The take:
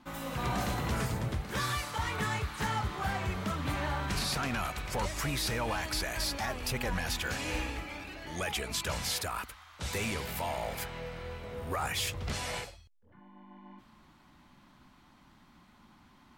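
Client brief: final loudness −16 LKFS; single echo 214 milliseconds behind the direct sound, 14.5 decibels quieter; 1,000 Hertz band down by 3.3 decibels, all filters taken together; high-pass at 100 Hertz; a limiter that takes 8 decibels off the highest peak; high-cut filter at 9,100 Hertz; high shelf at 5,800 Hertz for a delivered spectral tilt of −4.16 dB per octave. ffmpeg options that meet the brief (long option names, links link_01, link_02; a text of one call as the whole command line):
ffmpeg -i in.wav -af "highpass=100,lowpass=9100,equalizer=frequency=1000:width_type=o:gain=-4,highshelf=frequency=5800:gain=-8.5,alimiter=level_in=6dB:limit=-24dB:level=0:latency=1,volume=-6dB,aecho=1:1:214:0.188,volume=23.5dB" out.wav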